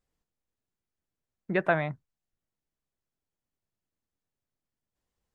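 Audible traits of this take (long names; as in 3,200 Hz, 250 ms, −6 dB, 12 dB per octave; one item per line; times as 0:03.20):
background noise floor −90 dBFS
spectral slope −2.5 dB per octave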